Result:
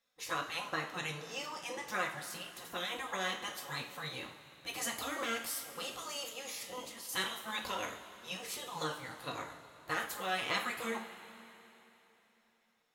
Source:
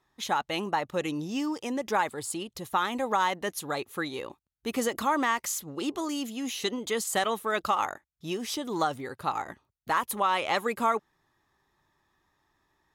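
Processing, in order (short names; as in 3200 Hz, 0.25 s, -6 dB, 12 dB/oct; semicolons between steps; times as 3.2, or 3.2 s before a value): spectral gate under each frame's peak -10 dB weak; 6.61–7.09 negative-ratio compressor -46 dBFS, ratio -1; two-slope reverb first 0.38 s, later 3.5 s, from -16 dB, DRR -0.5 dB; gain -4.5 dB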